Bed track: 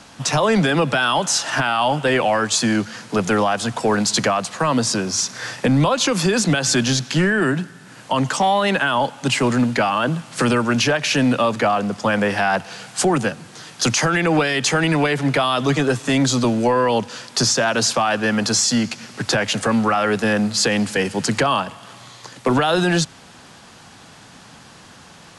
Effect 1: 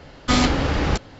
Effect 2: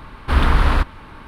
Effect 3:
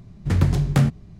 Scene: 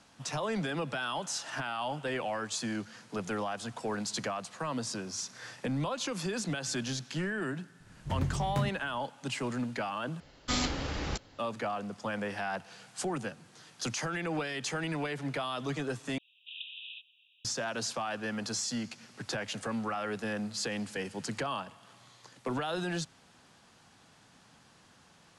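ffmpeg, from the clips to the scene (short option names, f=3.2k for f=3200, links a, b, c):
-filter_complex "[0:a]volume=-16.5dB[a];[1:a]highshelf=f=3.8k:g=10.5[b];[2:a]asuperpass=centerf=3100:order=20:qfactor=2.4[c];[a]asplit=3[d][e][f];[d]atrim=end=10.204[g];[b]atrim=end=1.19,asetpts=PTS-STARTPTS,volume=-14.5dB[h];[e]atrim=start=11.386:end=16.184[i];[c]atrim=end=1.27,asetpts=PTS-STARTPTS,volume=-9dB[j];[f]atrim=start=17.446[k];[3:a]atrim=end=1.19,asetpts=PTS-STARTPTS,volume=-14dB,afade=t=in:d=0.004:c=hsin,afade=t=out:st=1.186:d=0.004:c=hsin,adelay=7800[l];[g][h]acrossfade=d=0.004:c1=hsin:c2=hsin[m];[m][i]acrossfade=d=0.004:c1=hsin:c2=hsin[n];[n][j]acrossfade=d=0.004:c1=hsin:c2=hsin[o];[o][k]acrossfade=d=0.004:c1=hsin:c2=hsin[p];[p][l]amix=inputs=2:normalize=0"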